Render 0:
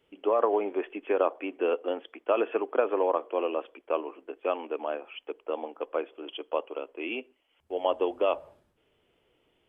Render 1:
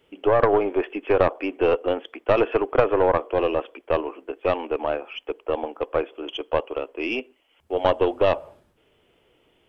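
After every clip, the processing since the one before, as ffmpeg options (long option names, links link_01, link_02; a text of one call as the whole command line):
ffmpeg -i in.wav -af "aeval=exprs='0.282*(cos(1*acos(clip(val(0)/0.282,-1,1)))-cos(1*PI/2))+0.112*(cos(2*acos(clip(val(0)/0.282,-1,1)))-cos(2*PI/2))+0.0112*(cos(4*acos(clip(val(0)/0.282,-1,1)))-cos(4*PI/2))+0.0141*(cos(5*acos(clip(val(0)/0.282,-1,1)))-cos(5*PI/2))+0.00562*(cos(6*acos(clip(val(0)/0.282,-1,1)))-cos(6*PI/2))':channel_layout=same,volume=5.5dB" out.wav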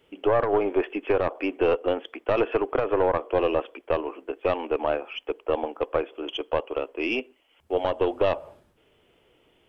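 ffmpeg -i in.wav -af "alimiter=limit=-11dB:level=0:latency=1:release=182" out.wav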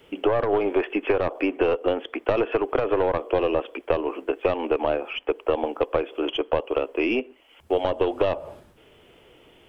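ffmpeg -i in.wav -filter_complex "[0:a]acrossover=split=600|2700[link_01][link_02][link_03];[link_01]acompressor=threshold=-31dB:ratio=4[link_04];[link_02]acompressor=threshold=-38dB:ratio=4[link_05];[link_03]acompressor=threshold=-51dB:ratio=4[link_06];[link_04][link_05][link_06]amix=inputs=3:normalize=0,volume=9dB" out.wav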